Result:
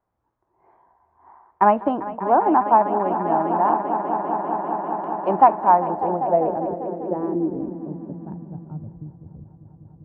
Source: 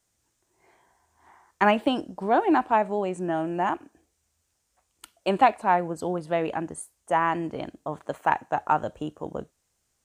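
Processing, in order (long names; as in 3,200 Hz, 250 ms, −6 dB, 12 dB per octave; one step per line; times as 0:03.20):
echo that builds up and dies away 198 ms, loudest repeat 5, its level −13 dB
low-pass filter sweep 990 Hz → 110 Hz, 0:05.80–0:09.25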